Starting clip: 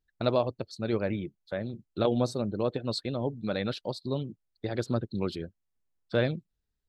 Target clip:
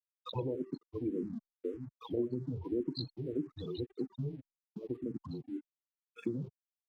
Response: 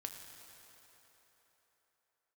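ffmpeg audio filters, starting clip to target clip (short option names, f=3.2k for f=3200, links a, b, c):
-filter_complex "[0:a]afreqshift=-120,highpass=f=140:w=0.5412,highpass=f=140:w=1.3066,equalizer=f=210:t=q:w=4:g=-8,equalizer=f=350:t=q:w=4:g=7,equalizer=f=990:t=q:w=4:g=4,equalizer=f=1.5k:t=q:w=4:g=-9,equalizer=f=2.6k:t=q:w=4:g=10,equalizer=f=4.1k:t=q:w=4:g=6,lowpass=f=8k:w=0.5412,lowpass=f=8k:w=1.3066,acrossover=split=790|2800[a][b][c];[c]adelay=30[d];[a]adelay=120[e];[e][b][d]amix=inputs=3:normalize=0[f];[1:a]atrim=start_sample=2205,atrim=end_sample=3969,asetrate=40131,aresample=44100[g];[f][g]afir=irnorm=-1:irlink=0,aeval=exprs='val(0)+0.000447*(sin(2*PI*50*n/s)+sin(2*PI*2*50*n/s)/2+sin(2*PI*3*50*n/s)/3+sin(2*PI*4*50*n/s)/4+sin(2*PI*5*50*n/s)/5)':c=same,afftfilt=real='re*gte(hypot(re,im),0.0355)':imag='im*gte(hypot(re,im),0.0355)':win_size=1024:overlap=0.75,lowshelf=f=310:t=q:w=1.5:g=8,bandreject=f=1.5k:w=6.5,acrossover=split=2300[h][i];[h]aeval=exprs='sgn(val(0))*max(abs(val(0))-0.001,0)':c=same[j];[i]aeval=exprs='val(0)*sin(2*PI*25*n/s)':c=same[k];[j][k]amix=inputs=2:normalize=0,acompressor=threshold=-31dB:ratio=3,asplit=2[l][m];[m]afreqshift=-1.8[n];[l][n]amix=inputs=2:normalize=1,volume=1dB"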